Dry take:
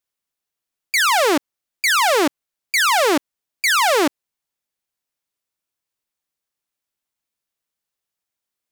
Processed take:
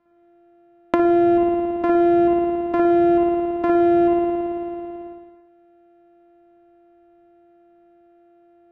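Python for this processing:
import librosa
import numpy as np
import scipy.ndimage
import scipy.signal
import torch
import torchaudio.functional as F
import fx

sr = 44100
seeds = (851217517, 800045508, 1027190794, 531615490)

y = np.r_[np.sort(x[:len(x) // 128 * 128].reshape(-1, 128), axis=1).ravel(), x[len(x) // 128 * 128:]]
y = scipy.signal.sosfilt(scipy.signal.butter(2, 1300.0, 'lowpass', fs=sr, output='sos'), y)
y = fx.rev_spring(y, sr, rt60_s=1.2, pass_ms=(55,), chirp_ms=45, drr_db=-4.5)
y = fx.band_squash(y, sr, depth_pct=100)
y = F.gain(torch.from_numpy(y), -10.5).numpy()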